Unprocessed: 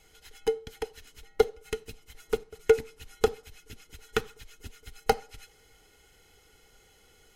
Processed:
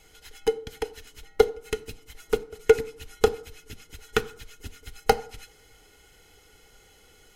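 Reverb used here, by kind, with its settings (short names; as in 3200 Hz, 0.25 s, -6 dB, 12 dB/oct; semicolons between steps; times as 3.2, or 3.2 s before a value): FDN reverb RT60 0.63 s, low-frequency decay 1.2×, high-frequency decay 0.5×, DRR 17 dB; gain +4 dB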